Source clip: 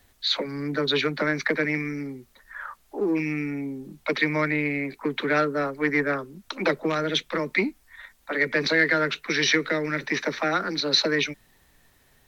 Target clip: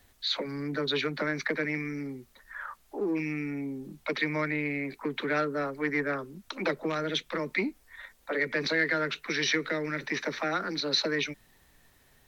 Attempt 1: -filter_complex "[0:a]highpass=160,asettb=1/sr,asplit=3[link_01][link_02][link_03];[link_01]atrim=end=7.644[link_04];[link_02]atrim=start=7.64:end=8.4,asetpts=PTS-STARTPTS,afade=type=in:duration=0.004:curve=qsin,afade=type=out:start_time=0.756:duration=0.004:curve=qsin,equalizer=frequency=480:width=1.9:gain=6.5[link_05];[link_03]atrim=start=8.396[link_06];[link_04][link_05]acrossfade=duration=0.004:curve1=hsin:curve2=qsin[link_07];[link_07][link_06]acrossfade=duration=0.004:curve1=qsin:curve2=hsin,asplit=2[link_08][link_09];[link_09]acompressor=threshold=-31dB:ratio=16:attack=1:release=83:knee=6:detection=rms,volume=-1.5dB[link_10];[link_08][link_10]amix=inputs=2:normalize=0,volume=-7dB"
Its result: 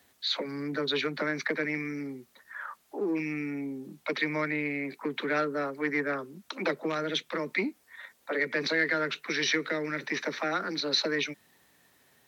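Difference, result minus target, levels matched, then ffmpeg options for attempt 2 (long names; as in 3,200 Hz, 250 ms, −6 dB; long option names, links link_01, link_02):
125 Hz band −3.5 dB
-filter_complex "[0:a]asettb=1/sr,asplit=3[link_01][link_02][link_03];[link_01]atrim=end=7.644[link_04];[link_02]atrim=start=7.64:end=8.4,asetpts=PTS-STARTPTS,afade=type=in:duration=0.004:curve=qsin,afade=type=out:start_time=0.756:duration=0.004:curve=qsin,equalizer=frequency=480:width=1.9:gain=6.5[link_05];[link_03]atrim=start=8.396[link_06];[link_04][link_05]acrossfade=duration=0.004:curve1=hsin:curve2=qsin[link_07];[link_07][link_06]acrossfade=duration=0.004:curve1=qsin:curve2=hsin,asplit=2[link_08][link_09];[link_09]acompressor=threshold=-31dB:ratio=16:attack=1:release=83:knee=6:detection=rms,volume=-1.5dB[link_10];[link_08][link_10]amix=inputs=2:normalize=0,volume=-7dB"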